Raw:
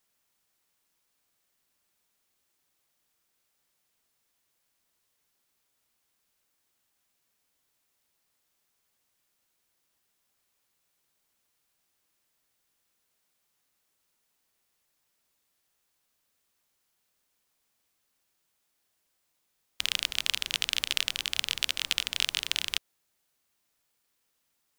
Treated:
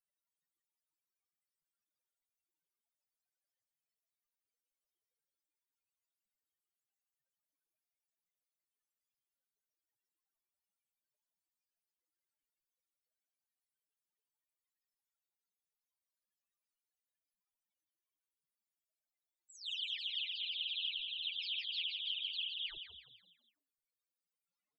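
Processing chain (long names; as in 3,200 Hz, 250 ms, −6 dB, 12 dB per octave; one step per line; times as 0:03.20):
every frequency bin delayed by itself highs early, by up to 303 ms
wrap-around overflow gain 19 dB
spectral peaks only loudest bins 8
dynamic equaliser 4,600 Hz, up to +5 dB, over −50 dBFS, Q 0.77
on a send: echo with shifted repeats 166 ms, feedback 45%, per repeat +54 Hz, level −7.5 dB
on the sum: level −4 dB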